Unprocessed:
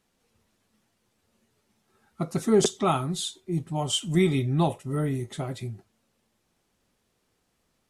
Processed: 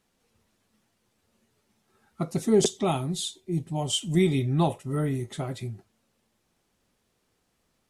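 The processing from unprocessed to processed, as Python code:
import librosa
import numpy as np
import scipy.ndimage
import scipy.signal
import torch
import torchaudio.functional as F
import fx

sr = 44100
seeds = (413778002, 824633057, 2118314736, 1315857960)

y = fx.peak_eq(x, sr, hz=1300.0, db=-9.5, octaves=0.75, at=(2.3, 4.41))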